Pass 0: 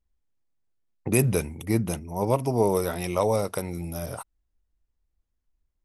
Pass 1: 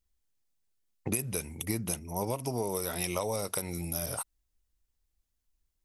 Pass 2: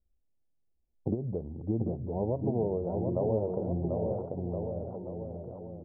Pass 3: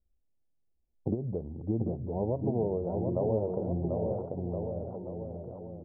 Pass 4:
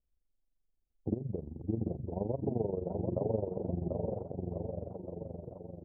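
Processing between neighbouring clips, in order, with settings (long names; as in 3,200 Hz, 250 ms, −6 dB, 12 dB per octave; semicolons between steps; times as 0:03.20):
high-shelf EQ 2,600 Hz +12 dB; downward compressor 16 to 1, threshold −24 dBFS, peak gain reduction 15.5 dB; level −3.5 dB
Butterworth low-pass 730 Hz 36 dB per octave; on a send: bouncing-ball delay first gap 740 ms, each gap 0.85×, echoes 5; on the sum: level +3 dB
no processing that can be heard
amplitude modulation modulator 23 Hz, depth 65%; low-pass filter 1,100 Hz 6 dB per octave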